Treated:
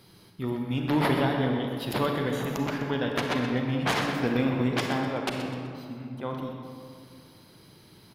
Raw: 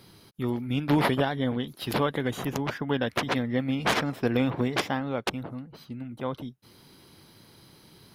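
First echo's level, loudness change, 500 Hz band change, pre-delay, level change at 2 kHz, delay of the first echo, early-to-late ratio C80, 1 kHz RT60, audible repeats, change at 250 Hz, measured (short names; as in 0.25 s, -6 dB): -10.5 dB, 0.0 dB, 0.0 dB, 32 ms, 0.0 dB, 0.126 s, 3.5 dB, 2.3 s, 1, +0.5 dB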